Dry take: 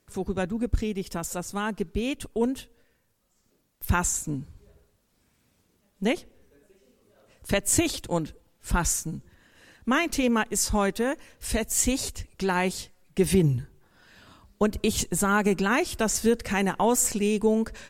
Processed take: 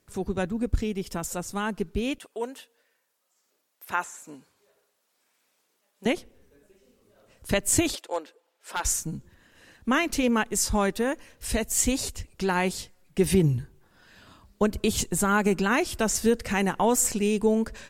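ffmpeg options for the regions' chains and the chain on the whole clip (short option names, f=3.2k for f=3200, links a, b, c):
-filter_complex "[0:a]asettb=1/sr,asplit=3[a][b][c];[a]atrim=end=2.184[d];[b]atrim=start=2.18:end=6.06,asetpts=PTS-STARTPTS,afade=t=in:d=0.004:c=qsin,afade=t=out:st=3.876:d=0.004:c=qsin,highpass=570,acrossover=split=2600[e][f];[f]acompressor=threshold=-43dB:ratio=4:attack=1:release=60[g];[e][g]amix=inputs=2:normalize=0[h];[c]atrim=start=6.056[i];[d][h]acrossfade=d=0.004:c1=hsin:c2=qsin[j];[j][i]acrossfade=d=0.004:c1=qsin:c2=hsin,asettb=1/sr,asplit=3[k][l][m];[k]atrim=end=7.954[n];[l]atrim=start=7.95:end=8.85,asetpts=PTS-STARTPTS,afade=t=in:d=0.004:c=qsin,afade=t=out:st=0.896:d=0.004:c=qsin,highpass=f=440:w=0.5412,highpass=f=440:w=1.3066,highshelf=f=5.5k:g=-9,aeval=exprs='0.119*(abs(mod(val(0)/0.119+3,4)-2)-1)':c=same[o];[m]atrim=start=8.846[p];[n][o]acrossfade=d=0.004:c1=hsin:c2=qsin[q];[q][p]acrossfade=d=0.004:c1=qsin:c2=hsin"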